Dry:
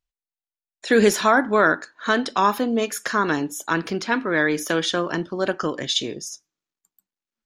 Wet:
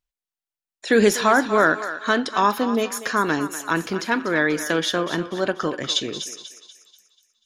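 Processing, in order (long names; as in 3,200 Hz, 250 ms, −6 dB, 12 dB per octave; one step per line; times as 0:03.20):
feedback echo with a high-pass in the loop 243 ms, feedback 45%, high-pass 640 Hz, level −10.5 dB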